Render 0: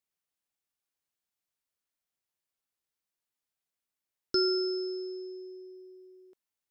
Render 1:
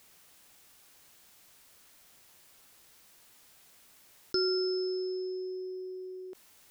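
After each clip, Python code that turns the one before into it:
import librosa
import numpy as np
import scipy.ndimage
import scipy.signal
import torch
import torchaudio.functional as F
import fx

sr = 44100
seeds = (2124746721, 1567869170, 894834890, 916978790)

y = fx.env_flatten(x, sr, amount_pct=50)
y = y * 10.0 ** (-3.0 / 20.0)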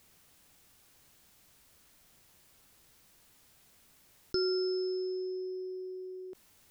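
y = fx.low_shelf(x, sr, hz=250.0, db=10.5)
y = y * 10.0 ** (-4.0 / 20.0)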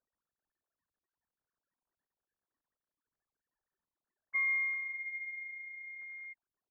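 y = fx.sine_speech(x, sr)
y = fx.freq_invert(y, sr, carrier_hz=2500)
y = y * 10.0 ** (-3.0 / 20.0)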